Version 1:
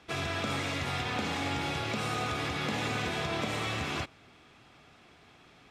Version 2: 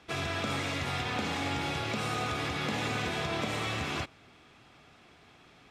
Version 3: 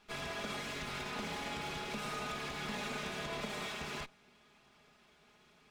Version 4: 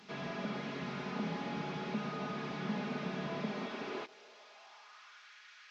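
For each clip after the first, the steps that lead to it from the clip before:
nothing audible
minimum comb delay 4.8 ms; gain -6 dB
delta modulation 32 kbps, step -53.5 dBFS; high-pass sweep 180 Hz -> 1600 Hz, 3.44–5.31; gain +1 dB

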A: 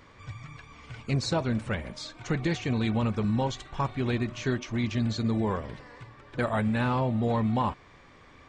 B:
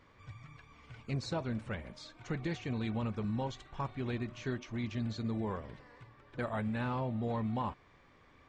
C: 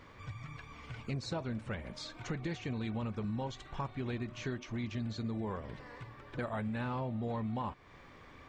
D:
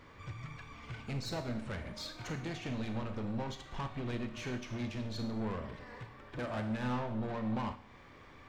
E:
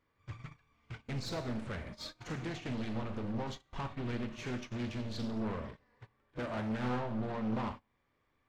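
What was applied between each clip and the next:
high shelf 6100 Hz -7 dB; gain -8.5 dB
compressor 2:1, threshold -49 dBFS, peak gain reduction 10 dB; gain +7.5 dB
soft clip -39.5 dBFS, distortion -9 dB; Schroeder reverb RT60 0.72 s, combs from 25 ms, DRR 6 dB; upward expander 1.5:1, over -52 dBFS; gain +6 dB
pre-echo 41 ms -15 dB; gate -43 dBFS, range -22 dB; Doppler distortion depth 0.49 ms

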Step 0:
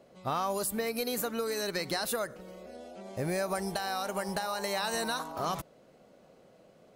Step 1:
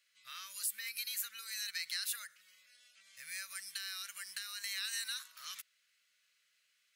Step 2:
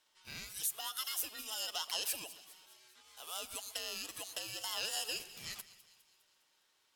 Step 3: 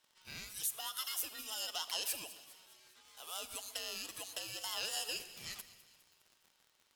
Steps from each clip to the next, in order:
inverse Chebyshev high-pass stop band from 890 Hz, stop band 40 dB; gain -2 dB
ring modulator 1100 Hz; split-band echo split 2500 Hz, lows 0.126 s, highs 0.204 s, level -16 dB; gain +4 dB
crackle 70/s -50 dBFS; on a send at -15 dB: reverb RT60 1.4 s, pre-delay 24 ms; on the sum: gain -1 dB

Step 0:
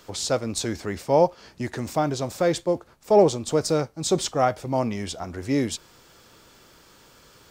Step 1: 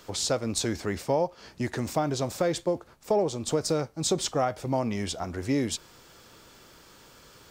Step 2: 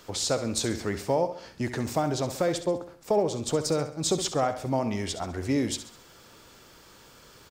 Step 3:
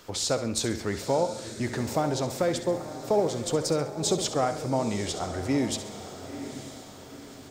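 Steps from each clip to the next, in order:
compressor 5:1, threshold -22 dBFS, peak gain reduction 10 dB
feedback echo 67 ms, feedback 44%, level -11.5 dB
diffused feedback echo 0.918 s, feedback 43%, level -11 dB

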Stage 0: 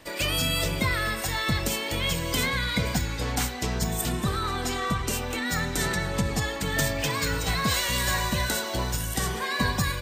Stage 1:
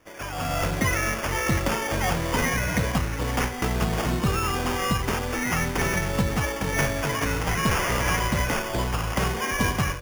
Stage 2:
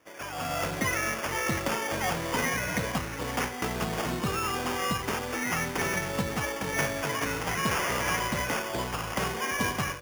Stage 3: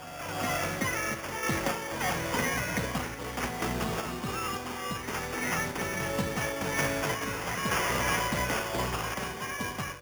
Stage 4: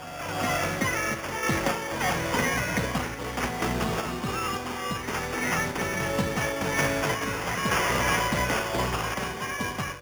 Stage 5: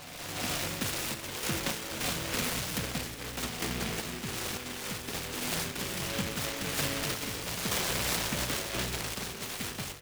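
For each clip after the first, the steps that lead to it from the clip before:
AGC gain up to 13.5 dB; sample-and-hold 11×; gain -8.5 dB
HPF 200 Hz 6 dB/oct; gain -3 dB
reverse echo 0.378 s -6.5 dB; random-step tremolo
high shelf 8900 Hz -5 dB; gain +4 dB
noise-modulated delay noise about 2100 Hz, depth 0.3 ms; gain -6.5 dB

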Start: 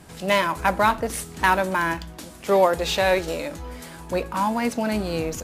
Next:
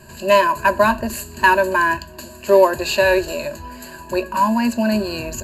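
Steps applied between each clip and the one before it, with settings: ripple EQ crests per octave 1.4, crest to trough 18 dB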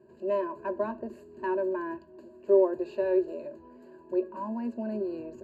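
band-pass 380 Hz, Q 2.9; gain -4.5 dB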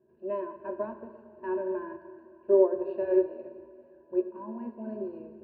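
air absorption 460 m; plate-style reverb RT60 2.5 s, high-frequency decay 0.85×, pre-delay 0 ms, DRR 4.5 dB; upward expander 1.5:1, over -41 dBFS; gain +2 dB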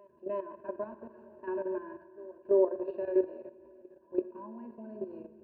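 level quantiser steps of 11 dB; reverse echo 0.334 s -23 dB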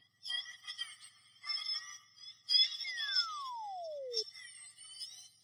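spectrum mirrored in octaves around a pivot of 1400 Hz; painted sound fall, 2.84–4.23, 420–2200 Hz -43 dBFS; mismatched tape noise reduction decoder only

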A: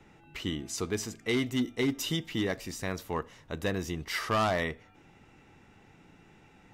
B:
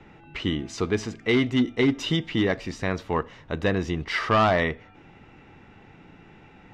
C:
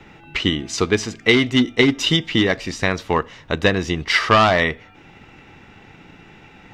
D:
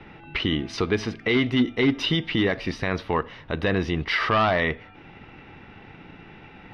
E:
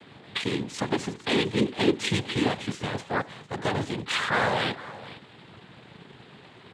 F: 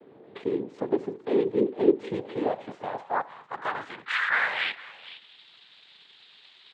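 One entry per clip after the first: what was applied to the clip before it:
LPF 3600 Hz 12 dB/oct; gain +7.5 dB
high shelf 2200 Hz +9 dB; transient shaper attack +4 dB, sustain -1 dB; gain +3.5 dB
limiter -12.5 dBFS, peak gain reduction 11 dB; running mean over 6 samples
echo 0.455 s -17 dB; noise vocoder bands 6; gain -3 dB
band-pass sweep 420 Hz -> 3800 Hz, 2–5.46; gain +5.5 dB

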